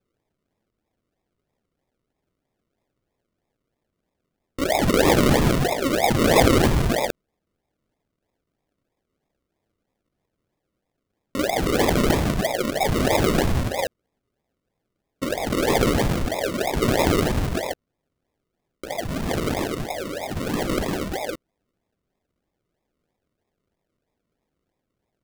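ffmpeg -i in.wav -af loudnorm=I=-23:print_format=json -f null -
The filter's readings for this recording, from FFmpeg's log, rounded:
"input_i" : "-22.1",
"input_tp" : "-3.4",
"input_lra" : "10.2",
"input_thresh" : "-32.4",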